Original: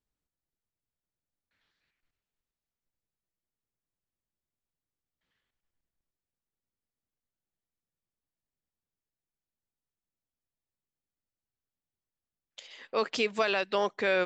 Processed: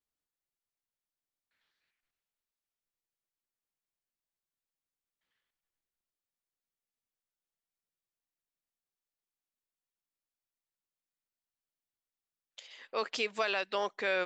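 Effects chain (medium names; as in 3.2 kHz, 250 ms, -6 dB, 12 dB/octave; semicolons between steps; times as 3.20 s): bass shelf 310 Hz -11 dB; trim -2.5 dB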